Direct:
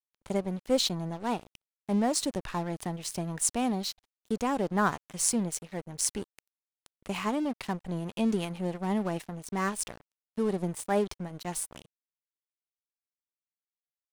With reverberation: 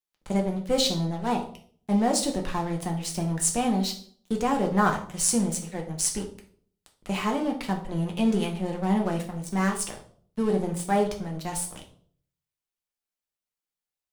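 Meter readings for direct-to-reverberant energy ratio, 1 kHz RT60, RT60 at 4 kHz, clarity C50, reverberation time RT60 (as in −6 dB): 1.5 dB, 0.50 s, 0.40 s, 10.0 dB, 0.55 s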